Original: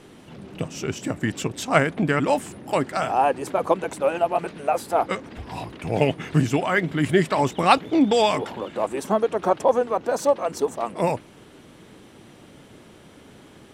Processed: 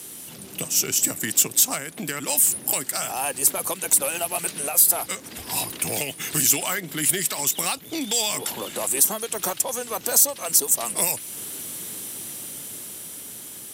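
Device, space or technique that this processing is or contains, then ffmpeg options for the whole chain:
FM broadcast chain: -filter_complex "[0:a]highpass=78,dynaudnorm=framelen=470:gausssize=9:maxgain=11.5dB,acrossover=split=170|1600[link_01][link_02][link_03];[link_01]acompressor=threshold=-40dB:ratio=4[link_04];[link_02]acompressor=threshold=-26dB:ratio=4[link_05];[link_03]acompressor=threshold=-31dB:ratio=4[link_06];[link_04][link_05][link_06]amix=inputs=3:normalize=0,aemphasis=mode=production:type=75fm,alimiter=limit=-14.5dB:level=0:latency=1:release=429,asoftclip=type=hard:threshold=-18.5dB,lowpass=frequency=15000:width=0.5412,lowpass=frequency=15000:width=1.3066,aemphasis=mode=production:type=75fm,volume=-1.5dB"

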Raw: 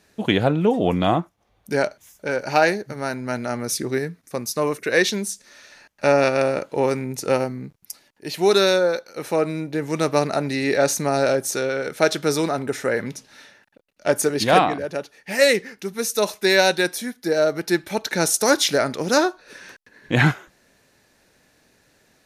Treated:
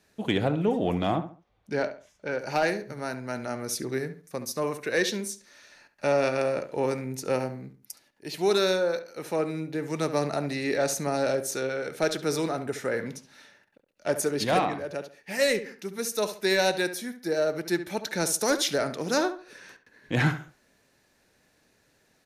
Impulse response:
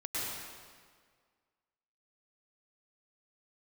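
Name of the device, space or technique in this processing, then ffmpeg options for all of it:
one-band saturation: -filter_complex "[0:a]asettb=1/sr,asplit=3[link_01][link_02][link_03];[link_01]atrim=end=1.164[link_04];[link_02]atrim=start=1.16:end=2.39,asetpts=PTS-STARTPTS,afade=type=in:duration=0.004:curve=qsin,afade=type=out:start_time=1.226:duration=0.004:curve=qsin,lowpass=4900[link_05];[link_03]atrim=start=2.386[link_06];[link_04][link_05]acrossfade=duration=0.004:curve1=hsin:curve2=qsin[link_07];[link_07][link_06]acrossfade=duration=0.004:curve1=qsin:curve2=hsin,acrossover=split=480|4300[link_08][link_09][link_10];[link_09]asoftclip=type=tanh:threshold=-13dB[link_11];[link_08][link_11][link_10]amix=inputs=3:normalize=0,asplit=2[link_12][link_13];[link_13]adelay=69,lowpass=frequency=2500:poles=1,volume=-11dB,asplit=2[link_14][link_15];[link_15]adelay=69,lowpass=frequency=2500:poles=1,volume=0.32,asplit=2[link_16][link_17];[link_17]adelay=69,lowpass=frequency=2500:poles=1,volume=0.32[link_18];[link_12][link_14][link_16][link_18]amix=inputs=4:normalize=0,volume=-6.5dB"

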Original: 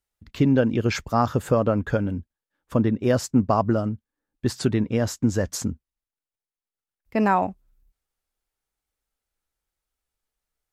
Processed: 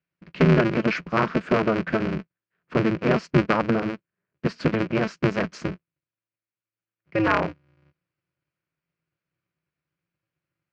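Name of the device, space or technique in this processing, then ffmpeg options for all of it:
ring modulator pedal into a guitar cabinet: -af "aeval=exprs='val(0)*sgn(sin(2*PI*110*n/s))':channel_layout=same,highpass=93,equalizer=frequency=100:width_type=q:width=4:gain=-8,equalizer=frequency=170:width_type=q:width=4:gain=8,equalizer=frequency=810:width_type=q:width=4:gain=-8,equalizer=frequency=1500:width_type=q:width=4:gain=3,equalizer=frequency=2400:width_type=q:width=4:gain=5,equalizer=frequency=3600:width_type=q:width=4:gain=-9,lowpass=frequency=4200:width=0.5412,lowpass=frequency=4200:width=1.3066"

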